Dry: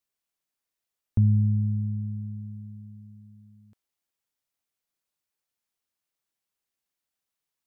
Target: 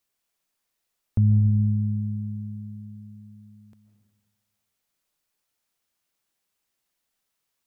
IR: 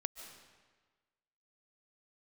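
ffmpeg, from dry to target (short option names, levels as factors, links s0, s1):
-filter_complex "[0:a]alimiter=limit=0.1:level=0:latency=1:release=346[s0];[1:a]atrim=start_sample=2205[s1];[s0][s1]afir=irnorm=-1:irlink=0,volume=2.66"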